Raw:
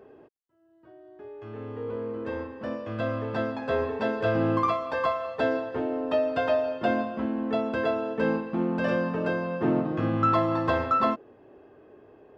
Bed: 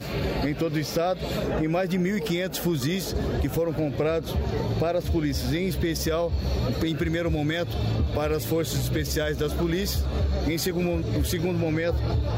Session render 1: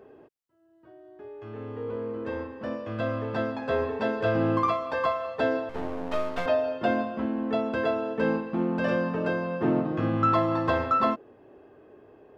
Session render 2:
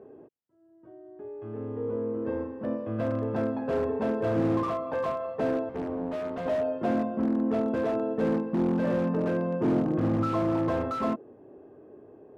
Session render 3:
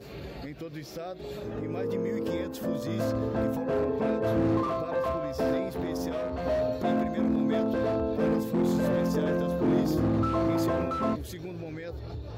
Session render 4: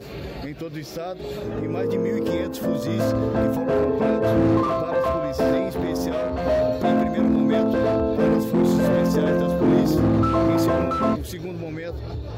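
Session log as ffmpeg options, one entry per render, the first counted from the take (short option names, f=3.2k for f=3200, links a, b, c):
-filter_complex "[0:a]asettb=1/sr,asplit=3[a][b][c];[a]atrim=end=5.694[d];[b]atrim=start=5.69:end=6.46,asetpts=PTS-STARTPTS,afade=t=in:d=0.004:c=qsin,afade=t=out:st=0.766:d=0.004:c=qsin,aeval=exprs='max(val(0),0)':c=same[e];[c]atrim=start=6.456[f];[d][e]acrossfade=d=0.004:c1=hsin:c2=qsin[g];[g][f]acrossfade=d=0.004:c1=qsin:c2=hsin"
-filter_complex "[0:a]asplit=2[a][b];[b]aeval=exprs='(mod(11.9*val(0)+1,2)-1)/11.9':c=same,volume=-5dB[c];[a][c]amix=inputs=2:normalize=0,bandpass=f=240:t=q:w=0.53:csg=0"
-filter_complex "[1:a]volume=-13.5dB[a];[0:a][a]amix=inputs=2:normalize=0"
-af "volume=7dB"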